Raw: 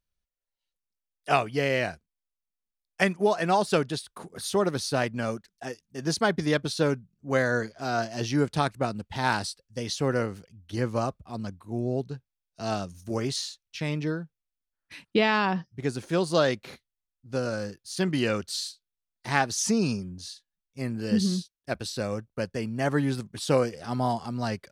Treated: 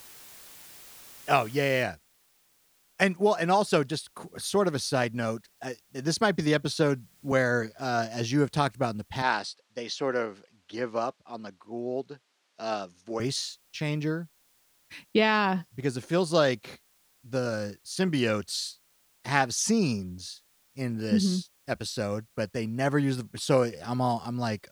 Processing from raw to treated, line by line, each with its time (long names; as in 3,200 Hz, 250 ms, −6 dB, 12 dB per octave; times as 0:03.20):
0:01.83: noise floor change −49 dB −66 dB
0:06.21–0:07.32: multiband upward and downward compressor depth 40%
0:09.22–0:13.20: band-pass filter 320–5,000 Hz